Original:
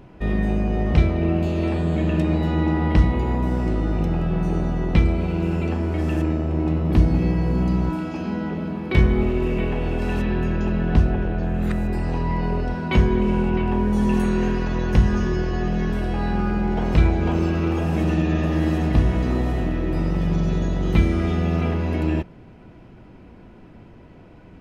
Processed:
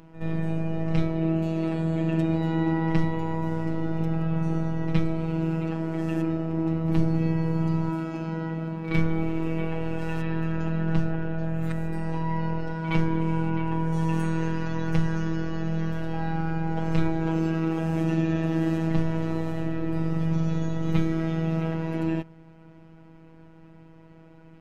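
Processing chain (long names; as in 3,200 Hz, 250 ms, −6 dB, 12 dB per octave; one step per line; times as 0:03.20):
phases set to zero 162 Hz
echo ahead of the sound 68 ms −13.5 dB
level −3.5 dB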